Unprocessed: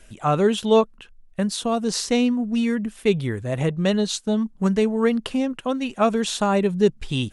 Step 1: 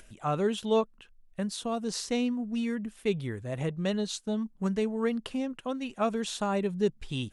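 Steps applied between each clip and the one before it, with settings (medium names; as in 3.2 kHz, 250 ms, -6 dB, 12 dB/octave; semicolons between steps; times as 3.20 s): upward compressor, threshold -39 dBFS; trim -9 dB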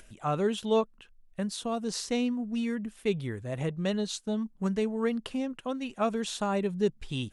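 no audible change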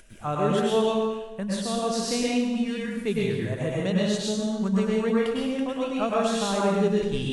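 plate-style reverb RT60 1.1 s, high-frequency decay 0.9×, pre-delay 90 ms, DRR -5 dB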